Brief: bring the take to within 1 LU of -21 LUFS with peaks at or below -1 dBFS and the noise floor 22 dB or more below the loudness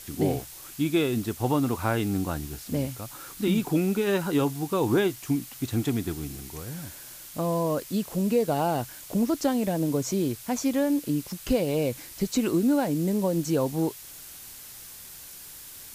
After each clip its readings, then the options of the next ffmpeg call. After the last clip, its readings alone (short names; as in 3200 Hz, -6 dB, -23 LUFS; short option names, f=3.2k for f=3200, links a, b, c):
noise floor -44 dBFS; noise floor target -49 dBFS; loudness -27.0 LUFS; peak -11.5 dBFS; loudness target -21.0 LUFS
-> -af "afftdn=nr=6:nf=-44"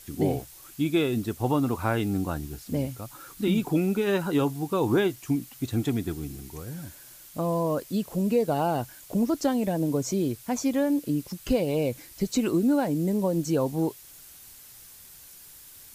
noise floor -49 dBFS; loudness -27.0 LUFS; peak -11.5 dBFS; loudness target -21.0 LUFS
-> -af "volume=6dB"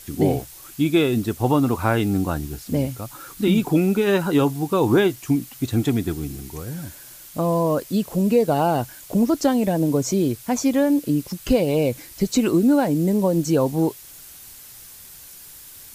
loudness -21.0 LUFS; peak -5.5 dBFS; noise floor -43 dBFS